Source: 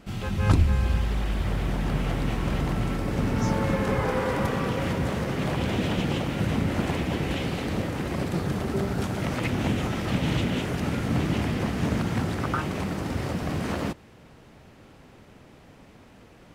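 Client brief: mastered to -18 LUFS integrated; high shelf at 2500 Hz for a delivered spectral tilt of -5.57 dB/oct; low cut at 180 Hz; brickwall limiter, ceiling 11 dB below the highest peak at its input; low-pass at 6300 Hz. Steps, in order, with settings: HPF 180 Hz; LPF 6300 Hz; high shelf 2500 Hz -6.5 dB; gain +15 dB; limiter -8.5 dBFS

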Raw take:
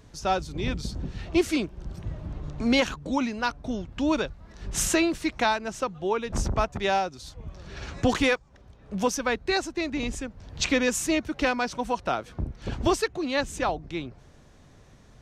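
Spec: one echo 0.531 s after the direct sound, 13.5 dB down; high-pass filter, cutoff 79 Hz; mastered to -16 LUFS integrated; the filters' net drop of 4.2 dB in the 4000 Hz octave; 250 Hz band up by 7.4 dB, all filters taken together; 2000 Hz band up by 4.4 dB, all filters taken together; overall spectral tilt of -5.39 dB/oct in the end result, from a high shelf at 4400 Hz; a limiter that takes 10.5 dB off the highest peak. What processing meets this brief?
HPF 79 Hz; bell 250 Hz +9 dB; bell 2000 Hz +8 dB; bell 4000 Hz -5 dB; high shelf 4400 Hz -6.5 dB; limiter -15.5 dBFS; echo 0.531 s -13.5 dB; gain +10.5 dB

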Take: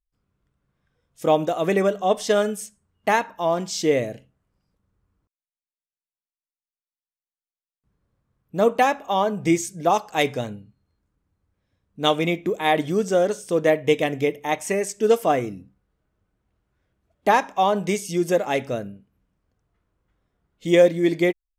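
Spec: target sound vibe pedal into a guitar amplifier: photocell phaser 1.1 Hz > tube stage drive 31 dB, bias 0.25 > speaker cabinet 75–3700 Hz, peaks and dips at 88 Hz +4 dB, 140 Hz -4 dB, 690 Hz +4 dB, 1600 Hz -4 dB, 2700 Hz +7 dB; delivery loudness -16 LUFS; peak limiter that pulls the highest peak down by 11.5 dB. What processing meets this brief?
limiter -16.5 dBFS; photocell phaser 1.1 Hz; tube stage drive 31 dB, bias 0.25; speaker cabinet 75–3700 Hz, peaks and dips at 88 Hz +4 dB, 140 Hz -4 dB, 690 Hz +4 dB, 1600 Hz -4 dB, 2700 Hz +7 dB; gain +20 dB

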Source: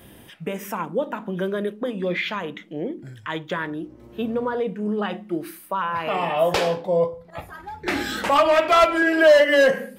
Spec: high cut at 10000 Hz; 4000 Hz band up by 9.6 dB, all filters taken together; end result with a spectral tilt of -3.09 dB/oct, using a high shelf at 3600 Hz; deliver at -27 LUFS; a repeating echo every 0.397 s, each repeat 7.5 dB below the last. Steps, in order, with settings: LPF 10000 Hz; high shelf 3600 Hz +8 dB; bell 4000 Hz +8 dB; feedback echo 0.397 s, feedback 42%, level -7.5 dB; gain -7.5 dB

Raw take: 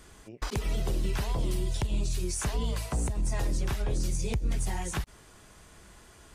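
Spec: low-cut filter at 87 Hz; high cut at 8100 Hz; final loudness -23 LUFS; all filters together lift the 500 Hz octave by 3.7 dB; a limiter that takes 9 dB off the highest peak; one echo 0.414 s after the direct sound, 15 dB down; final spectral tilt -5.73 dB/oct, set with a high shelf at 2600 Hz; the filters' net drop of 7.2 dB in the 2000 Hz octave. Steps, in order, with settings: HPF 87 Hz; LPF 8100 Hz; bell 500 Hz +5.5 dB; bell 2000 Hz -7 dB; high shelf 2600 Hz -6 dB; limiter -29 dBFS; echo 0.414 s -15 dB; gain +15.5 dB

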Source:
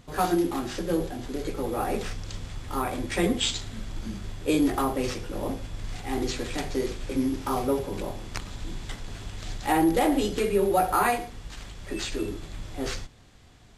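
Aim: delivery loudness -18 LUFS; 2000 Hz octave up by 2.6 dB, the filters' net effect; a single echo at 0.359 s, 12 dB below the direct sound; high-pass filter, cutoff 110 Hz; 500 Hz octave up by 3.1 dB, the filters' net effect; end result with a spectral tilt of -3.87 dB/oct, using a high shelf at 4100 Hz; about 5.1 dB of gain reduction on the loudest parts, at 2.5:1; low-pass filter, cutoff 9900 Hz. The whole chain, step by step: HPF 110 Hz; LPF 9900 Hz; bell 500 Hz +4 dB; bell 2000 Hz +4 dB; high shelf 4100 Hz -4.5 dB; compressor 2.5:1, threshold -24 dBFS; echo 0.359 s -12 dB; gain +11.5 dB

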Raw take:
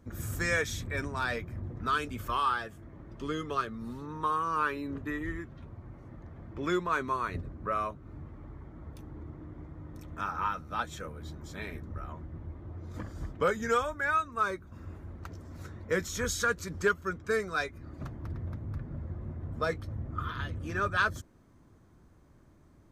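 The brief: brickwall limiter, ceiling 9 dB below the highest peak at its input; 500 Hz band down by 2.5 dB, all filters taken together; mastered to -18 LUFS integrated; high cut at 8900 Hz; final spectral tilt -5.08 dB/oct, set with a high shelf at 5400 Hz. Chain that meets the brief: LPF 8900 Hz; bell 500 Hz -3 dB; high shelf 5400 Hz -3 dB; gain +20 dB; limiter -6 dBFS

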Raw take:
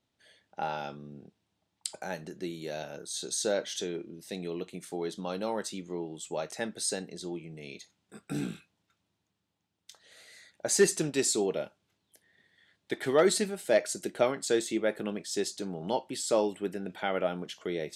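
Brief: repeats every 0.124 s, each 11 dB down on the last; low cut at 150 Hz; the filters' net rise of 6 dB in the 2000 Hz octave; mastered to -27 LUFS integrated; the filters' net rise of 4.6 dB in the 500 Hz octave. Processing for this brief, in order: HPF 150 Hz; bell 500 Hz +5.5 dB; bell 2000 Hz +7 dB; feedback echo 0.124 s, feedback 28%, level -11 dB; gain +1 dB

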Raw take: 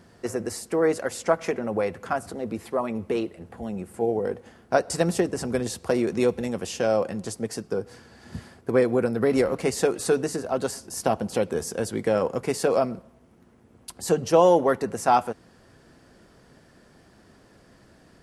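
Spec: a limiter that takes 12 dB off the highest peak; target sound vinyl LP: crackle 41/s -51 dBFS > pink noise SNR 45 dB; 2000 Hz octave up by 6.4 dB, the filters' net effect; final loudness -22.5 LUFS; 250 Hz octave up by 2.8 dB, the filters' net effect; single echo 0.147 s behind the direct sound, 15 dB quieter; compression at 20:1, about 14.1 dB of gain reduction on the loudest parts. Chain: bell 250 Hz +3.5 dB; bell 2000 Hz +8.5 dB; compressor 20:1, threshold -25 dBFS; limiter -21.5 dBFS; echo 0.147 s -15 dB; crackle 41/s -51 dBFS; pink noise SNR 45 dB; gain +11 dB

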